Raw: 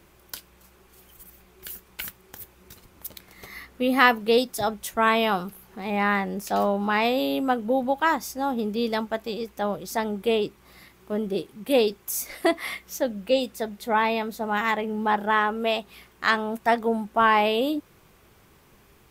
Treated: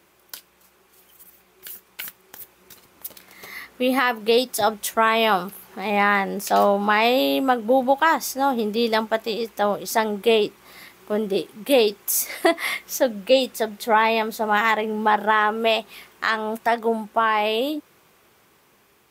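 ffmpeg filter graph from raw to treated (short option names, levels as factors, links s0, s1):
-filter_complex "[0:a]asettb=1/sr,asplit=3[s0][s1][s2];[s0]atrim=end=3.064[s3];[s1]atrim=start=3.06:end=3.52,asetpts=PTS-STARTPTS,afade=t=in:d=0.004:c=qsin,afade=t=out:st=0.456:d=0.004:c=qsin,aeval=exprs='0.0237*(abs(mod(val(0)/0.0237+3,4)-2)-1)':c=same,asplit=2[s4][s5];[s5]adelay=43,volume=0.211[s6];[s4][s6]amix=inputs=2:normalize=0,atrim=end_sample=20286[s7];[s2]atrim=start=3.516[s8];[s3][s7]acrossfade=d=0.004:c1=hsin:c2=qsin[s9];[s9][s8]acrossfade=d=0.004:c1=qsin:c2=hsin,highpass=f=350:p=1,alimiter=limit=0.224:level=0:latency=1:release=178,dynaudnorm=f=980:g=7:m=2.37"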